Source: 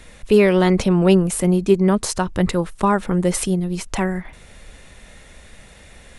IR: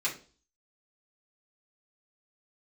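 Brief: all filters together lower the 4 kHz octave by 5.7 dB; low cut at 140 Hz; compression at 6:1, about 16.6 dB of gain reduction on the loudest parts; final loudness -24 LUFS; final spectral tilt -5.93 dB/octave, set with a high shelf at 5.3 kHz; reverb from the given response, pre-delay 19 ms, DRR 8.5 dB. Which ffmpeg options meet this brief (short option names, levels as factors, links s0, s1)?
-filter_complex "[0:a]highpass=140,equalizer=f=4000:t=o:g=-4.5,highshelf=f=5300:g=-8,acompressor=threshold=0.0398:ratio=6,asplit=2[s0][s1];[1:a]atrim=start_sample=2205,adelay=19[s2];[s1][s2]afir=irnorm=-1:irlink=0,volume=0.178[s3];[s0][s3]amix=inputs=2:normalize=0,volume=2.37"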